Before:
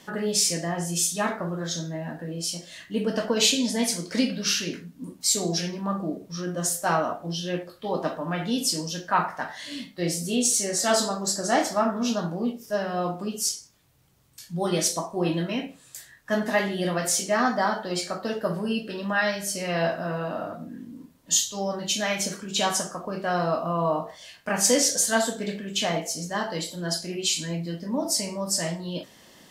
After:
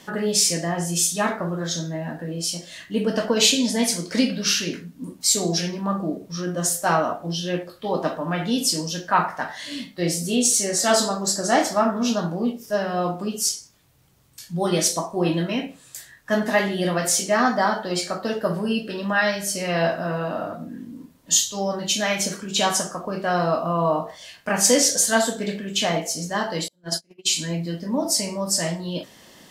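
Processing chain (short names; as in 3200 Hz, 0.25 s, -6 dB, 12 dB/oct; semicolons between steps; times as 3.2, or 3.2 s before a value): 26.68–27.38 gate -27 dBFS, range -34 dB; gain +3.5 dB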